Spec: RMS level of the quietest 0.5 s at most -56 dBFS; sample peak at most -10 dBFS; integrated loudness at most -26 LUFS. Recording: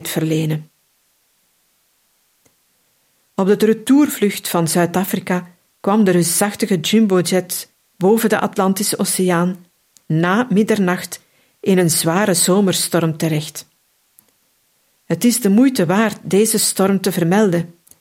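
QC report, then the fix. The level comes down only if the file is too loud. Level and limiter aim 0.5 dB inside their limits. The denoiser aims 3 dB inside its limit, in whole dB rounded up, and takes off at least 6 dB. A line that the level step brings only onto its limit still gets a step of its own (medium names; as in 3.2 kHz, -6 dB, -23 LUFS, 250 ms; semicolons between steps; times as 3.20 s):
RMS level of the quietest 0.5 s -62 dBFS: pass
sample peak -3.5 dBFS: fail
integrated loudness -16.0 LUFS: fail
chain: trim -10.5 dB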